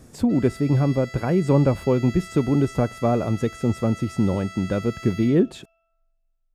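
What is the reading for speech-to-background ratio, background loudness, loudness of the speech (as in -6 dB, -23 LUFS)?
18.0 dB, -40.0 LUFS, -22.0 LUFS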